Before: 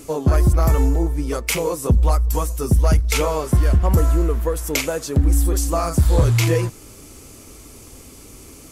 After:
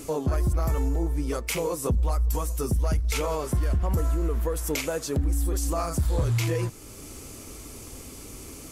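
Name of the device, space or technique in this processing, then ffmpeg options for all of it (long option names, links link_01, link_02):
stacked limiters: -af "alimiter=limit=-12.5dB:level=0:latency=1:release=68,alimiter=limit=-18dB:level=0:latency=1:release=448"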